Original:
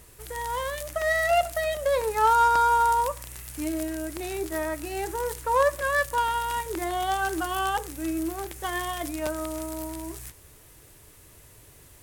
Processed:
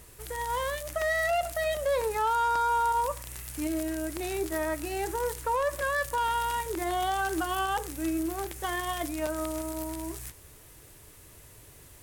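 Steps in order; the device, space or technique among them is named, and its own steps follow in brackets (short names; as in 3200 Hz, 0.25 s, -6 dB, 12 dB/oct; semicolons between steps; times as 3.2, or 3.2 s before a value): soft clipper into limiter (soft clip -11.5 dBFS, distortion -26 dB; limiter -21 dBFS, peak gain reduction 7.5 dB)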